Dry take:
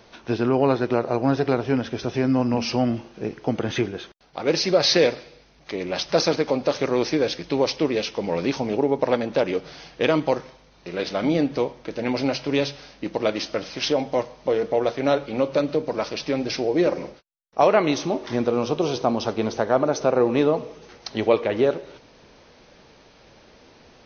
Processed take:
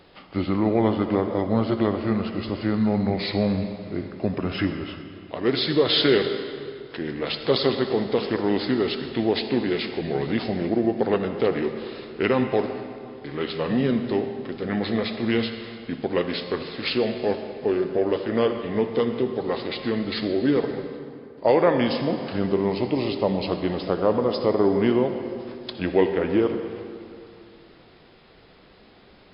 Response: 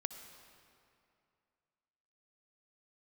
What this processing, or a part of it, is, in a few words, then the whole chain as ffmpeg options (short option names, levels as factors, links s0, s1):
slowed and reverbed: -filter_complex "[0:a]asetrate=36162,aresample=44100[s0];[1:a]atrim=start_sample=2205[s1];[s0][s1]afir=irnorm=-1:irlink=0"